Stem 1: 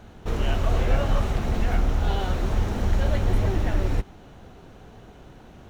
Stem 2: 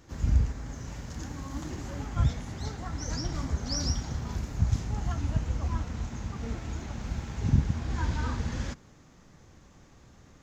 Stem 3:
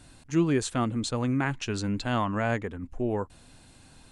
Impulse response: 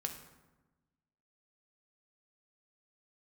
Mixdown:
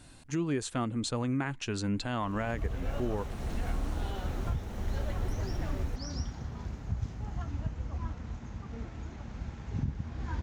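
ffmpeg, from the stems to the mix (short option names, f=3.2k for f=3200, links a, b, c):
-filter_complex "[0:a]dynaudnorm=f=440:g=3:m=12dB,adynamicequalizer=threshold=0.00398:dfrequency=7700:dqfactor=0.7:tfrequency=7700:tqfactor=0.7:attack=5:release=100:ratio=0.375:range=3:mode=boostabove:tftype=highshelf,adelay=1950,volume=-20dB[a];[1:a]aemphasis=mode=reproduction:type=50fm,adelay=2300,volume=-6dB[b];[2:a]volume=-1dB[c];[a][b][c]amix=inputs=3:normalize=0,alimiter=limit=-22.5dB:level=0:latency=1:release=346"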